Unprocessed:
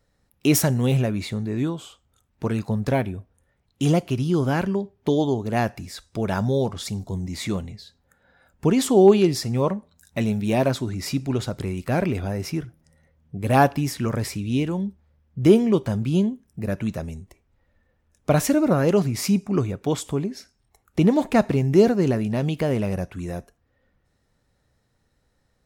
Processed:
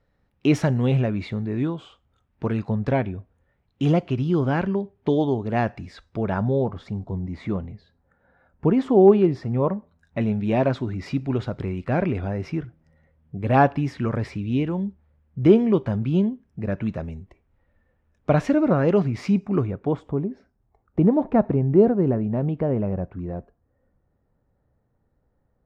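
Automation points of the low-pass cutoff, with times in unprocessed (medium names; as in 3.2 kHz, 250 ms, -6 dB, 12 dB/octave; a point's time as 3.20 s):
5.90 s 2.8 kHz
6.64 s 1.5 kHz
9.70 s 1.5 kHz
10.56 s 2.5 kHz
19.49 s 2.5 kHz
20.07 s 1 kHz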